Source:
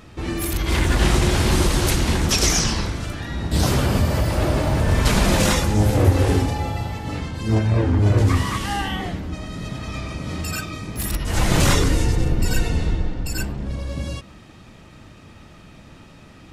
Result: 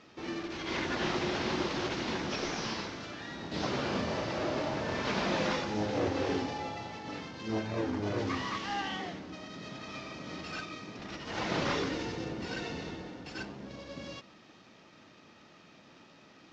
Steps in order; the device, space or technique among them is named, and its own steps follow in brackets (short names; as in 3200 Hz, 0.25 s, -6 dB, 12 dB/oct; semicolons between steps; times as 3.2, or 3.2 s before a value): early wireless headset (HPF 240 Hz 12 dB/oct; CVSD 32 kbps); 3.82–4.4 doubler 36 ms -5.5 dB; gain -8.5 dB